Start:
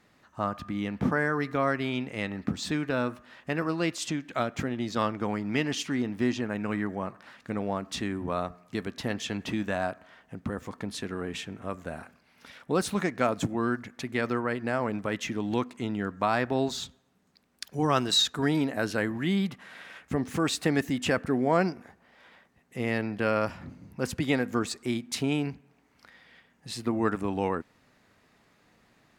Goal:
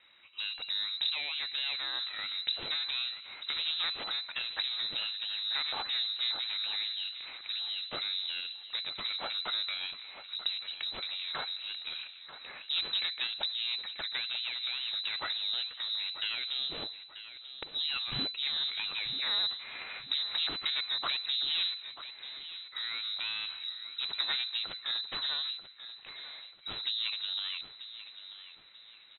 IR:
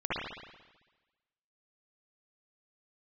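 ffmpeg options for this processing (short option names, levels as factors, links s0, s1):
-filter_complex "[0:a]equalizer=f=620:w=0.79:g=-13,acompressor=threshold=0.0126:ratio=3,aeval=exprs='0.119*(cos(1*acos(clip(val(0)/0.119,-1,1)))-cos(1*PI/2))+0.0188*(cos(8*acos(clip(val(0)/0.119,-1,1)))-cos(8*PI/2))':c=same,asplit=2[s0][s1];[s1]aecho=0:1:938|1876|2814|3752:0.224|0.0828|0.0306|0.0113[s2];[s0][s2]amix=inputs=2:normalize=0,lowpass=f=3400:t=q:w=0.5098,lowpass=f=3400:t=q:w=0.6013,lowpass=f=3400:t=q:w=0.9,lowpass=f=3400:t=q:w=2.563,afreqshift=-4000,volume=1.88"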